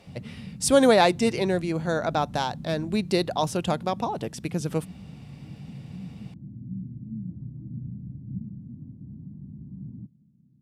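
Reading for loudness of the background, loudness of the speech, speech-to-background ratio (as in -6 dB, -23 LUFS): -40.5 LUFS, -24.5 LUFS, 16.0 dB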